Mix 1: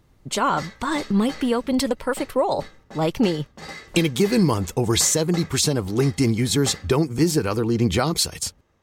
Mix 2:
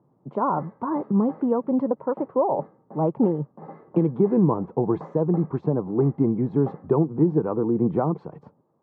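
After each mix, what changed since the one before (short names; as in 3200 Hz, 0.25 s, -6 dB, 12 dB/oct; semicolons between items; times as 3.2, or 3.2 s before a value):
master: add Chebyshev band-pass 140–1000 Hz, order 3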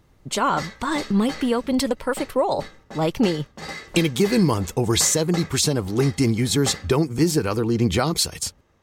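background +3.0 dB; master: remove Chebyshev band-pass 140–1000 Hz, order 3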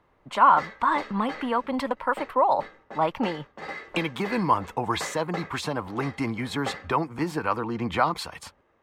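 speech: add fifteen-band EQ 400 Hz -11 dB, 1000 Hz +8 dB, 6300 Hz -3 dB; master: add three-band isolator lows -13 dB, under 280 Hz, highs -18 dB, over 2800 Hz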